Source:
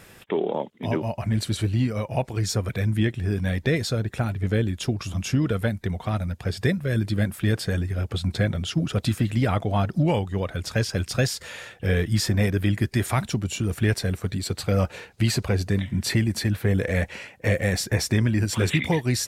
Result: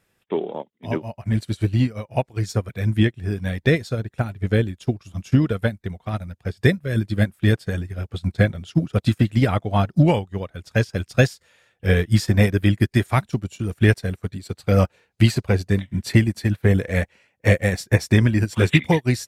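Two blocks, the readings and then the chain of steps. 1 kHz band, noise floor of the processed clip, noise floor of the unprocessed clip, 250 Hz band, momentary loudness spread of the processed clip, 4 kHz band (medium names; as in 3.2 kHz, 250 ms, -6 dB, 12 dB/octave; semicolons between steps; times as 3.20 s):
+2.5 dB, -69 dBFS, -49 dBFS, +4.0 dB, 10 LU, -1.5 dB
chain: upward expansion 2.5:1, over -36 dBFS; trim +8.5 dB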